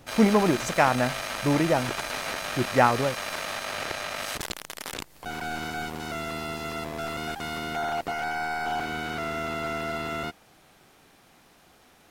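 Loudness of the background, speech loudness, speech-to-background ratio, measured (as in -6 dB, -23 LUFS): -31.5 LUFS, -24.5 LUFS, 7.0 dB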